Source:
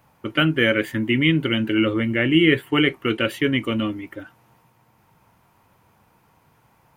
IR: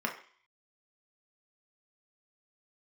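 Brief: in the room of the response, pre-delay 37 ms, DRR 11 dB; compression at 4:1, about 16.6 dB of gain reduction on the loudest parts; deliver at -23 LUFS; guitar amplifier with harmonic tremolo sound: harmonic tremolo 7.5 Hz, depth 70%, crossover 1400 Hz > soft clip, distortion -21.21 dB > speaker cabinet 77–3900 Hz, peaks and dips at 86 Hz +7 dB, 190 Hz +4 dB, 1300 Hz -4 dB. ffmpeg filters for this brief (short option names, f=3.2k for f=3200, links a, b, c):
-filter_complex "[0:a]acompressor=threshold=-33dB:ratio=4,asplit=2[a][b];[1:a]atrim=start_sample=2205,adelay=37[c];[b][c]afir=irnorm=-1:irlink=0,volume=-17.5dB[d];[a][d]amix=inputs=2:normalize=0,acrossover=split=1400[e][f];[e]aeval=exprs='val(0)*(1-0.7/2+0.7/2*cos(2*PI*7.5*n/s))':c=same[g];[f]aeval=exprs='val(0)*(1-0.7/2-0.7/2*cos(2*PI*7.5*n/s))':c=same[h];[g][h]amix=inputs=2:normalize=0,asoftclip=threshold=-26dB,highpass=77,equalizer=f=86:t=q:w=4:g=7,equalizer=f=190:t=q:w=4:g=4,equalizer=f=1.3k:t=q:w=4:g=-4,lowpass=f=3.9k:w=0.5412,lowpass=f=3.9k:w=1.3066,volume=15dB"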